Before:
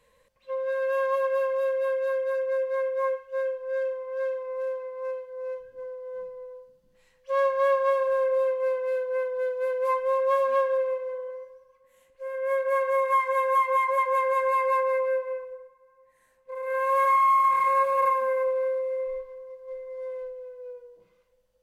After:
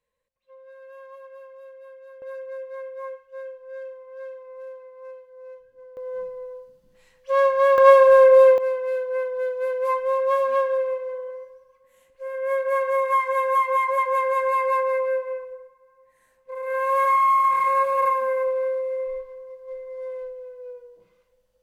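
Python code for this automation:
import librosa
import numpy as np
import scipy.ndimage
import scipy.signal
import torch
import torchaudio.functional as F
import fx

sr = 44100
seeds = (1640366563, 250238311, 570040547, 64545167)

y = fx.gain(x, sr, db=fx.steps((0.0, -18.0), (2.22, -8.0), (5.97, 5.0), (7.78, 12.0), (8.58, 2.0)))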